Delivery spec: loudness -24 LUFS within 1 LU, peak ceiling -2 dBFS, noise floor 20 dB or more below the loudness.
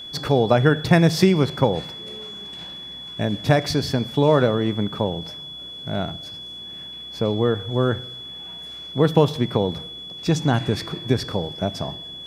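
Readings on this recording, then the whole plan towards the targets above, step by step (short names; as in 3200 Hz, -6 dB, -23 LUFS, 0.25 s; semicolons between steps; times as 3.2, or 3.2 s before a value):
steady tone 3400 Hz; tone level -34 dBFS; loudness -21.5 LUFS; peak -2.5 dBFS; loudness target -24.0 LUFS
-> notch 3400 Hz, Q 30; gain -2.5 dB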